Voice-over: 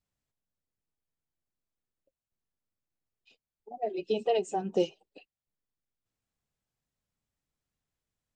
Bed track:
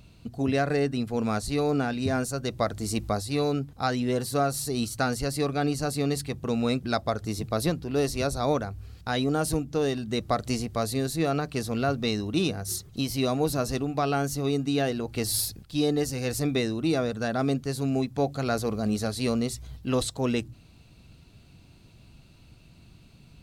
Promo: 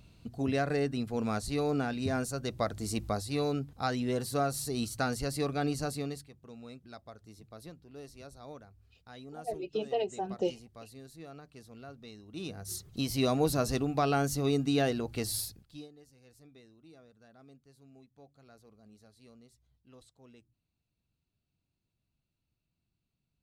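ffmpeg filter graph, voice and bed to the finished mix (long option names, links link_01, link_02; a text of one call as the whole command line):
ffmpeg -i stem1.wav -i stem2.wav -filter_complex "[0:a]adelay=5650,volume=-4dB[link_01];[1:a]volume=15dB,afade=type=out:start_time=5.82:duration=0.47:silence=0.141254,afade=type=in:start_time=12.27:duration=0.97:silence=0.1,afade=type=out:start_time=14.88:duration=1.01:silence=0.0354813[link_02];[link_01][link_02]amix=inputs=2:normalize=0" out.wav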